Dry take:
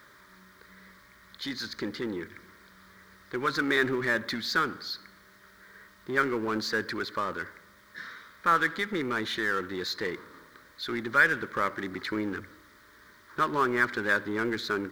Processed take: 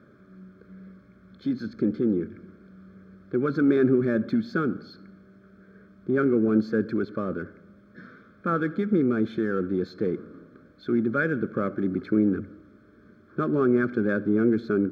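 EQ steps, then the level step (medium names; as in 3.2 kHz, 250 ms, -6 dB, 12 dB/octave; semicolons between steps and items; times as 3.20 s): boxcar filter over 46 samples; high-pass 80 Hz; peaking EQ 210 Hz +5.5 dB 0.84 oct; +9.0 dB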